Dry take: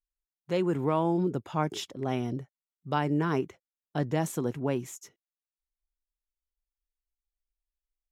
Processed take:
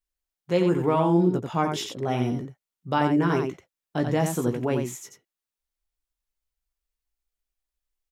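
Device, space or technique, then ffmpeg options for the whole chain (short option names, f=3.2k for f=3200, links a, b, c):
slapback doubling: -filter_complex "[0:a]asplit=3[a][b][c];[b]adelay=17,volume=-6.5dB[d];[c]adelay=88,volume=-5.5dB[e];[a][d][e]amix=inputs=3:normalize=0,volume=3.5dB"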